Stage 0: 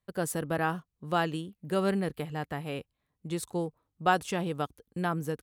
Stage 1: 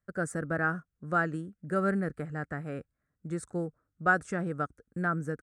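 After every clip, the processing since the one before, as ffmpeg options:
-af "firequalizer=gain_entry='entry(270,0);entry(420,-3);entry(620,-1);entry(940,-12);entry(1400,8);entry(3000,-21);entry(5800,-8);entry(8600,-3);entry(12000,-25)':delay=0.05:min_phase=1"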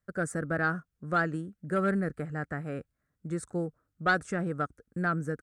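-af "aeval=exprs='0.251*sin(PI/2*1.58*val(0)/0.251)':c=same,volume=-6.5dB"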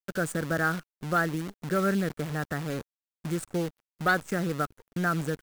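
-filter_complex "[0:a]asplit=2[a][b];[b]acompressor=threshold=-35dB:ratio=12,volume=-2.5dB[c];[a][c]amix=inputs=2:normalize=0,acrusher=bits=7:dc=4:mix=0:aa=0.000001"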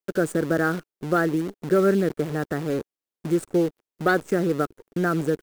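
-af "equalizer=f=380:t=o:w=1.3:g=11.5"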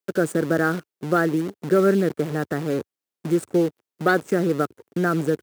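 -af "highpass=f=86:w=0.5412,highpass=f=86:w=1.3066,volume=1.5dB"

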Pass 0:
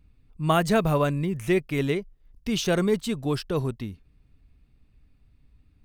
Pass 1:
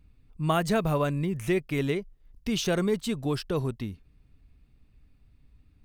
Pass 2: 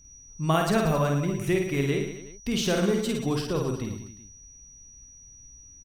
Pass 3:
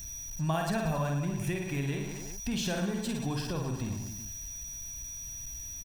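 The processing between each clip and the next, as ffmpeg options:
-af "acompressor=threshold=-27dB:ratio=1.5"
-af "aeval=exprs='val(0)+0.00224*sin(2*PI*5800*n/s)':c=same,aecho=1:1:50|110|182|268.4|372.1:0.631|0.398|0.251|0.158|0.1"
-af "aeval=exprs='val(0)+0.5*0.0141*sgn(val(0))':c=same,acompressor=threshold=-28dB:ratio=2,aecho=1:1:1.2:0.5,volume=-3.5dB"

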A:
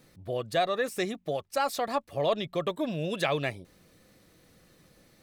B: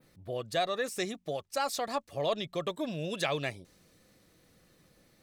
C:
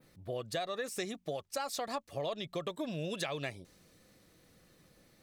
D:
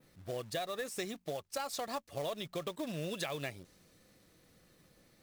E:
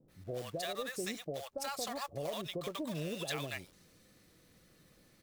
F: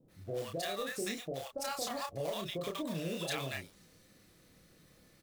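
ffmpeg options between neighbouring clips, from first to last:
-af "adynamicequalizer=threshold=0.00282:dfrequency=6400:dqfactor=0.78:tfrequency=6400:tqfactor=0.78:attack=5:release=100:ratio=0.375:range=3.5:mode=boostabove:tftype=bell,volume=-4dB"
-af "acompressor=threshold=-33dB:ratio=6"
-af "acrusher=bits=3:mode=log:mix=0:aa=0.000001,volume=-1.5dB"
-filter_complex "[0:a]acrossover=split=700[a][b];[b]adelay=80[c];[a][c]amix=inputs=2:normalize=0,volume=1dB"
-filter_complex "[0:a]asplit=2[a][b];[b]adelay=30,volume=-4dB[c];[a][c]amix=inputs=2:normalize=0"

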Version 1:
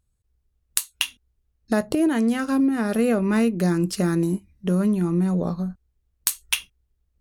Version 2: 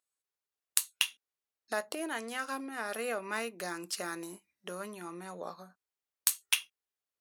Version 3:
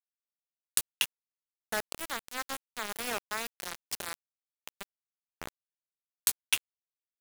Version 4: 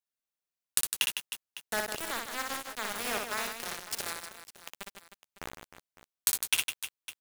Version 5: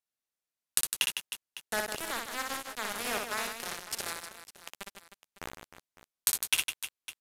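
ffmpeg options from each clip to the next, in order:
-af "highpass=760,volume=-5dB"
-af "acrusher=bits=4:mix=0:aa=0.000001"
-af "aecho=1:1:60|156|309.6|555.4|948.6:0.631|0.398|0.251|0.158|0.1"
-af "aresample=32000,aresample=44100"

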